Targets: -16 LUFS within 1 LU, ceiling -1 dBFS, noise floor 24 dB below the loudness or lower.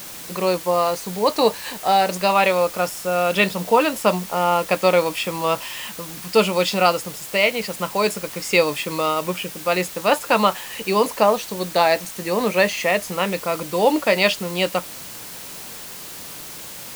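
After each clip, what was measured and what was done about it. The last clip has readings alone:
noise floor -36 dBFS; noise floor target -45 dBFS; loudness -20.5 LUFS; peak level -3.0 dBFS; loudness target -16.0 LUFS
-> noise print and reduce 9 dB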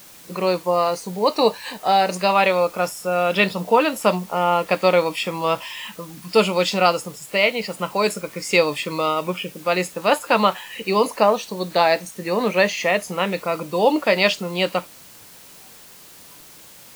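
noise floor -45 dBFS; loudness -20.5 LUFS; peak level -3.5 dBFS; loudness target -16.0 LUFS
-> trim +4.5 dB; peak limiter -1 dBFS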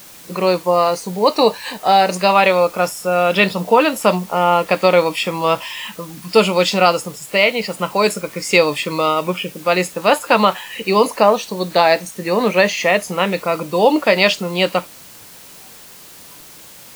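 loudness -16.0 LUFS; peak level -1.0 dBFS; noise floor -40 dBFS

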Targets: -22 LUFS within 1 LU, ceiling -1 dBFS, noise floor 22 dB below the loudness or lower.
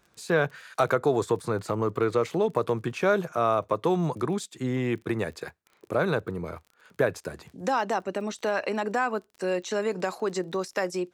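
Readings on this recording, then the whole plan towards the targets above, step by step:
tick rate 28 per s; loudness -28.0 LUFS; peak level -10.0 dBFS; loudness target -22.0 LUFS
-> de-click; trim +6 dB

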